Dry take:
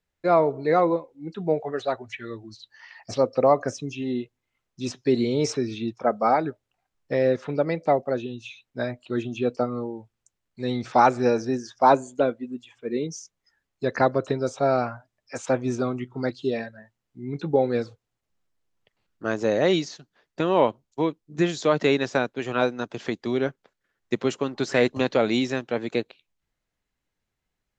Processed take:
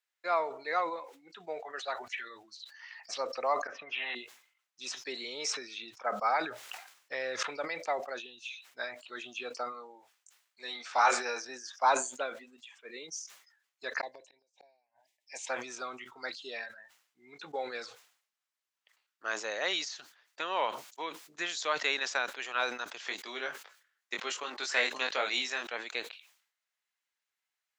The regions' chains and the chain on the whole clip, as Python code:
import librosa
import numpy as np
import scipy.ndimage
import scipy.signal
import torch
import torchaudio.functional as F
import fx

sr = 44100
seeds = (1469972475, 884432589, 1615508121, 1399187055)

y = fx.chain(x, sr, fx.auto_swell(attack_ms=481.0),
    fx.lowpass(hz=1900.0, slope=24),
    fx.spectral_comp(ratio=4.0), at=(3.67, 4.15))
y = fx.chain(y, sr, fx.peak_eq(hz=120.0, db=7.5, octaves=0.3),
    fx.sustainer(db_per_s=60.0), at=(6.3, 7.43))
y = fx.chain(y, sr, fx.low_shelf(hz=150.0, db=-12.0),
    fx.doubler(ms=21.0, db=-6.5), at=(9.72, 11.45))
y = fx.chain(y, sr, fx.cheby1_bandstop(low_hz=860.0, high_hz=2000.0, order=2),
    fx.gate_flip(shuts_db=-20.0, range_db=-42), at=(14.01, 15.49))
y = fx.chain(y, sr, fx.highpass(hz=130.0, slope=12),
    fx.doubler(ms=20.0, db=-5), at=(23.01, 25.67))
y = scipy.signal.sosfilt(scipy.signal.butter(2, 1200.0, 'highpass', fs=sr, output='sos'), y)
y = fx.sustainer(y, sr, db_per_s=100.0)
y = y * 10.0 ** (-1.5 / 20.0)